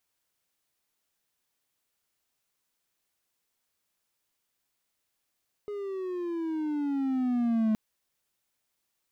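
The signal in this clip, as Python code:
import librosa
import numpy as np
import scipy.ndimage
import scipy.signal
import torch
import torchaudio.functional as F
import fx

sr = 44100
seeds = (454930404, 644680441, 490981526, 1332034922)

y = fx.riser_tone(sr, length_s=2.07, level_db=-20, wave='triangle', hz=417.0, rise_st=-11.5, swell_db=11)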